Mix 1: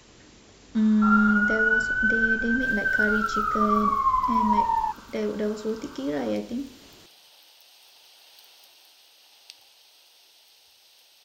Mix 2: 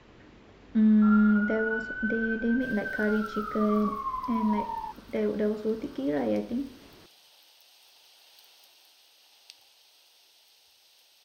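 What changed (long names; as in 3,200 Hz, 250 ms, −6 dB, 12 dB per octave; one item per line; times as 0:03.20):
speech: add low-pass filter 2,400 Hz 12 dB per octave
first sound −10.5 dB
second sound −4.0 dB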